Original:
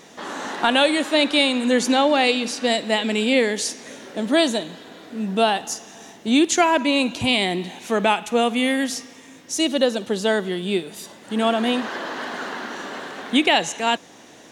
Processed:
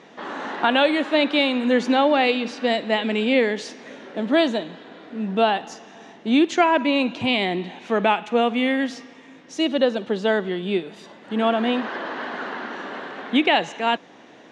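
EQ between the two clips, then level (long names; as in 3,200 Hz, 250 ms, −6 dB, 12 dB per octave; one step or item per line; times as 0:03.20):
band-pass filter 140–3,000 Hz
0.0 dB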